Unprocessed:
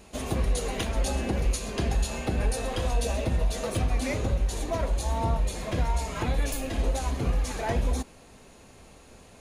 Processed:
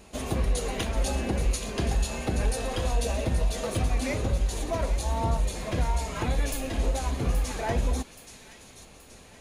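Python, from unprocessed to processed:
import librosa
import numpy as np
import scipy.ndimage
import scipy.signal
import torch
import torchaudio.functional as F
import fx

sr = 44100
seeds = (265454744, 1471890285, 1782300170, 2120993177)

y = fx.echo_wet_highpass(x, sr, ms=826, feedback_pct=49, hz=2500.0, wet_db=-9.5)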